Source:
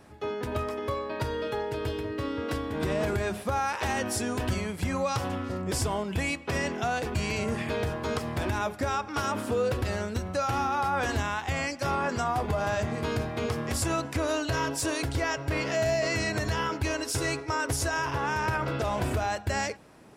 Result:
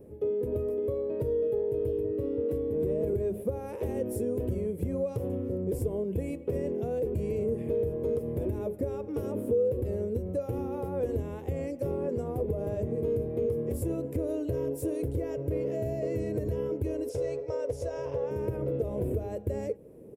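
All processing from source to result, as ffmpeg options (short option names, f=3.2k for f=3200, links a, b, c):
-filter_complex "[0:a]asettb=1/sr,asplit=3[a][b][c];[a]atrim=end=17.094[d];[b]atrim=start=17.09:end=18.31,asetpts=PTS-STARTPTS,afade=t=in:d=0.004:c=qsin,afade=t=out:st=1.216:d=0.004:c=qsin,lowpass=f=5.5k:t=q:w=1.8,lowshelf=f=430:t=q:w=3:g=-6.5[e];[c]atrim=start=18.306[f];[d][e]acrossfade=d=0.004:c1=hsin:c2=qsin[g];[g][f]acrossfade=d=0.004:c1=qsin:c2=hsin,firequalizer=gain_entry='entry(290,0);entry(470,10);entry(710,-14);entry(1400,-26);entry(2200,-20);entry(4500,-28);entry(12000,-3)':delay=0.05:min_phase=1,acompressor=threshold=-34dB:ratio=2,volume=3dB"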